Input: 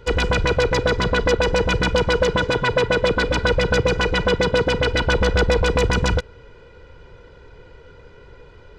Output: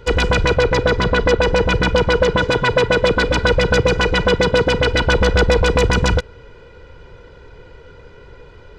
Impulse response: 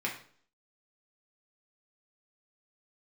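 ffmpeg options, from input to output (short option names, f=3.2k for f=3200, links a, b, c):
-filter_complex "[0:a]asettb=1/sr,asplit=3[a][b][c];[a]atrim=end=0.544[d];[b]atrim=start=0.54:end=2.4,asetpts=PTS-STARTPTS,afade=t=in:d=0.004:c=qsin,afade=t=out:st=1.856:d=0.004:c=qsin,highshelf=f=6.5k:g=-8[e];[c]atrim=start=2.396[f];[d][e]acrossfade=d=0.004:c1=hsin:c2=qsin[g];[g][f]acrossfade=d=0.004:c1=qsin:c2=hsin,volume=3.5dB"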